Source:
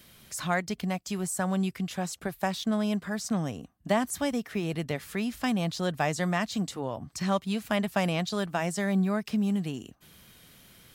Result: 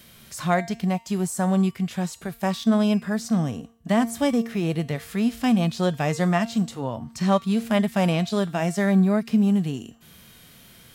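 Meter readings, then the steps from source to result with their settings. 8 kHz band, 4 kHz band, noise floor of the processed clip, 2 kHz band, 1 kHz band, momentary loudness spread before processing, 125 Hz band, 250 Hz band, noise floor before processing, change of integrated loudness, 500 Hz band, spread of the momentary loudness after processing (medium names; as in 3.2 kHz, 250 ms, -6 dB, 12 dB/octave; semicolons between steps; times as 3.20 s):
+1.0 dB, +2.5 dB, -51 dBFS, +2.0 dB, +4.5 dB, 6 LU, +7.5 dB, +7.5 dB, -57 dBFS, +6.5 dB, +5.5 dB, 8 LU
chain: harmonic-percussive split harmonic +9 dB; feedback comb 230 Hz, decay 0.52 s, harmonics all, mix 60%; trim +6 dB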